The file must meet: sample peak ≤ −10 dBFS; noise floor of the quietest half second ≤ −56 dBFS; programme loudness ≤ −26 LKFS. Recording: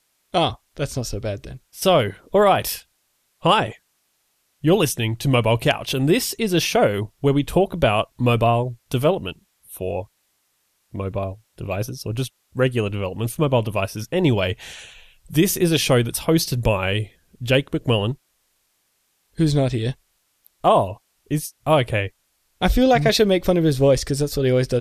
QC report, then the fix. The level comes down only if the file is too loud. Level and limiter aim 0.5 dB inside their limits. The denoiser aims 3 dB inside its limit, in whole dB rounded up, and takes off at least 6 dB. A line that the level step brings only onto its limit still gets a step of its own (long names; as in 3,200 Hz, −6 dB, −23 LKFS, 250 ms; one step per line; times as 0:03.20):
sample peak −3.0 dBFS: out of spec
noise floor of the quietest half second −68 dBFS: in spec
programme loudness −21.0 LKFS: out of spec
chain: level −5.5 dB
brickwall limiter −10.5 dBFS